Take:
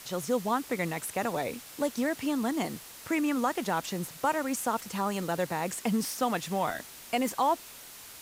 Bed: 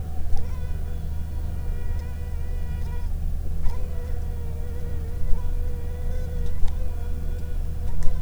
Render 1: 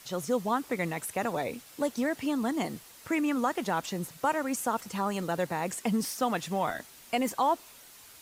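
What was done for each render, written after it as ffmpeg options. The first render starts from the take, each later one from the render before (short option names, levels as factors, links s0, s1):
-af "afftdn=nr=6:nf=-48"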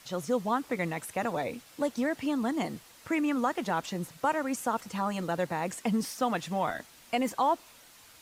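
-af "highshelf=f=7600:g=-7,bandreject=f=400:w=12"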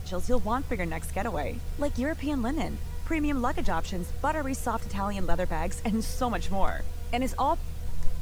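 -filter_complex "[1:a]volume=0.447[s0];[0:a][s0]amix=inputs=2:normalize=0"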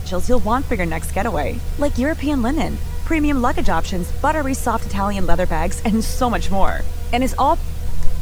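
-af "volume=3.16,alimiter=limit=0.891:level=0:latency=1"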